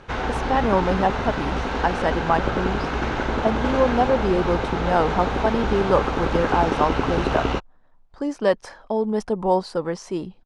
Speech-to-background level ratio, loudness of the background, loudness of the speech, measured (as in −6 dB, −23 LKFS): 1.0 dB, −25.0 LKFS, −24.0 LKFS